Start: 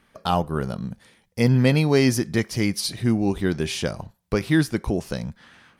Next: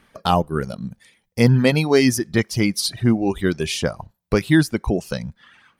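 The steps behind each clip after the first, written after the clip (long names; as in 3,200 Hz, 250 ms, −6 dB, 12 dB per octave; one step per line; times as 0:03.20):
reverb reduction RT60 1.3 s
level +4.5 dB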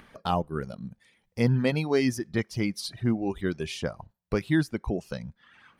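high-shelf EQ 5,100 Hz −8 dB
upward compression, threshold −35 dBFS
level −8.5 dB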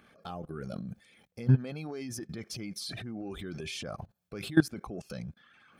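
transient designer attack −6 dB, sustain +7 dB
output level in coarse steps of 22 dB
notch comb filter 950 Hz
level +6 dB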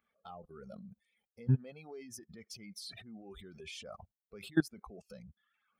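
spectral dynamics exaggerated over time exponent 1.5
level −5 dB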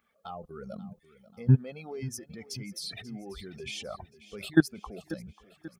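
repeating echo 538 ms, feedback 49%, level −17 dB
level +8 dB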